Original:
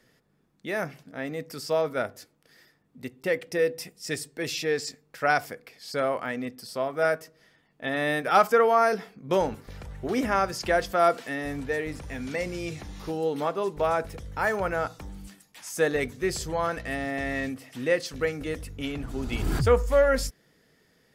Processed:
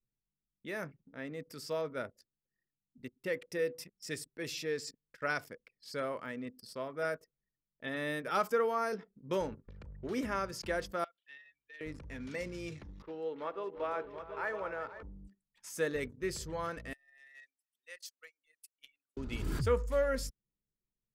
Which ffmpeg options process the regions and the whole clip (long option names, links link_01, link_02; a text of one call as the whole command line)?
ffmpeg -i in.wav -filter_complex "[0:a]asettb=1/sr,asplit=3[link_01][link_02][link_03];[link_01]atrim=end=11.044[link_04];[link_02]atrim=start=11.04:end=11.81,asetpts=PTS-STARTPTS,afade=type=in:duration=0.004:curve=qsin,afade=type=out:start_time=0.766:duration=0.004:curve=qsin,acompressor=threshold=-23dB:ratio=12:attack=3.2:release=140:knee=1:detection=peak,bandpass=frequency=3200:width_type=q:width=2.1[link_05];[link_03]atrim=start=11.806[link_06];[link_04][link_05]acrossfade=duration=0.004:curve1=hsin:curve2=qsin[link_07];[link_07][link_06]acrossfade=duration=0.004:curve1=qsin:curve2=hsin,asettb=1/sr,asplit=3[link_08][link_09][link_10];[link_08]atrim=end=13.024[link_11];[link_09]atrim=start=13.02:end=15.03,asetpts=PTS-STARTPTS,afade=type=in:duration=0.004:curve=qsin,afade=type=out:start_time=2.006:duration=0.004:curve=qsin,acrossover=split=330 3600:gain=0.2 1 0.141[link_12][link_13][link_14];[link_12][link_13][link_14]amix=inputs=3:normalize=0,aecho=1:1:70|347|496|725:0.106|0.178|0.224|0.376,atrim=end_sample=88641[link_15];[link_10]atrim=start=15.026[link_16];[link_11][link_15]acrossfade=duration=0.004:curve1=hsin:curve2=qsin[link_17];[link_17][link_16]acrossfade=duration=0.004:curve1=qsin:curve2=hsin,asettb=1/sr,asplit=3[link_18][link_19][link_20];[link_18]atrim=end=16.934[link_21];[link_19]atrim=start=16.93:end=19.17,asetpts=PTS-STARTPTS,afade=type=in:duration=0.004:curve=qsin,afade=type=out:start_time=2.236:duration=0.004:curve=qsin,highpass=430,aderivative[link_22];[link_20]atrim=start=19.166[link_23];[link_21][link_22]acrossfade=duration=0.004:curve1=hsin:curve2=qsin[link_24];[link_24][link_23]acrossfade=duration=0.004:curve1=qsin:curve2=hsin,adynamicequalizer=threshold=0.0126:dfrequency=2000:dqfactor=0.76:tfrequency=2000:tqfactor=0.76:attack=5:release=100:ratio=0.375:range=2:mode=cutabove:tftype=bell,anlmdn=0.158,equalizer=frequency=740:width_type=o:width=0.24:gain=-12.5,volume=-8.5dB" out.wav